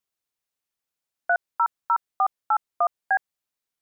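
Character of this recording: noise floor -87 dBFS; spectral tilt -1.0 dB/oct

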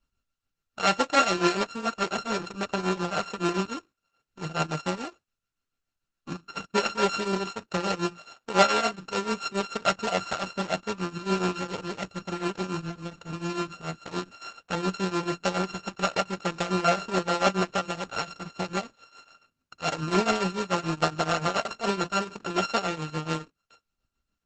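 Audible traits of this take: a buzz of ramps at a fixed pitch in blocks of 32 samples; tremolo triangle 7 Hz, depth 85%; Opus

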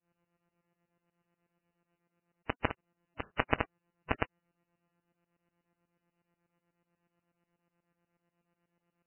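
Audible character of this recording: a buzz of ramps at a fixed pitch in blocks of 256 samples; tremolo saw up 8.2 Hz, depth 95%; MP3

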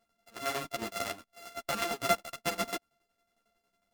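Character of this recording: a buzz of ramps at a fixed pitch in blocks of 64 samples; tremolo saw down 11 Hz, depth 75%; a shimmering, thickened sound

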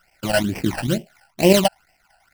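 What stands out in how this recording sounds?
aliases and images of a low sample rate 3500 Hz, jitter 20%; chopped level 9.1 Hz, depth 60%, duty 90%; phasing stages 12, 2.2 Hz, lowest notch 360–1300 Hz

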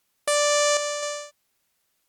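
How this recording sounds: random-step tremolo 3.9 Hz; a quantiser's noise floor 12-bit, dither triangular; Opus

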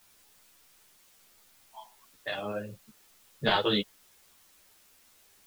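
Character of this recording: a quantiser's noise floor 10-bit, dither triangular; a shimmering, thickened sound

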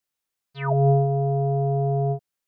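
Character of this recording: noise floor -85 dBFS; spectral tilt -8.0 dB/oct

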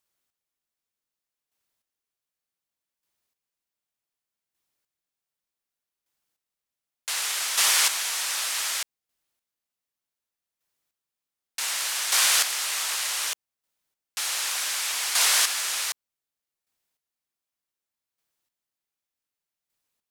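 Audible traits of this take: chopped level 0.66 Hz, depth 60%, duty 20%

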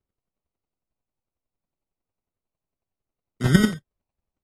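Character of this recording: phasing stages 8, 0.66 Hz, lowest notch 440–2800 Hz; chopped level 11 Hz, depth 60%, duty 15%; aliases and images of a low sample rate 1700 Hz, jitter 0%; AAC

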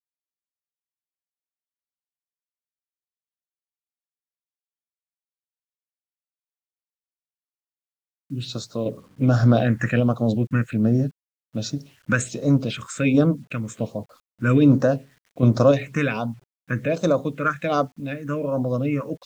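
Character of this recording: random-step tremolo, depth 55%; phasing stages 4, 1.3 Hz, lowest notch 660–2600 Hz; a quantiser's noise floor 10-bit, dither none

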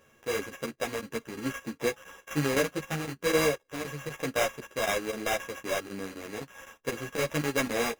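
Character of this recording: a buzz of ramps at a fixed pitch in blocks of 16 samples; chopped level 3.9 Hz, depth 65%, duty 90%; aliases and images of a low sample rate 4400 Hz, jitter 0%; a shimmering, thickened sound

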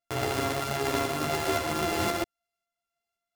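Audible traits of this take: a buzz of ramps at a fixed pitch in blocks of 64 samples; tremolo saw up 1.9 Hz, depth 35%; a shimmering, thickened sound

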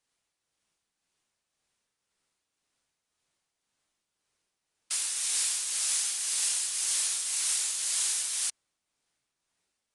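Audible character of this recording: tremolo triangle 1.9 Hz, depth 50%; AAC

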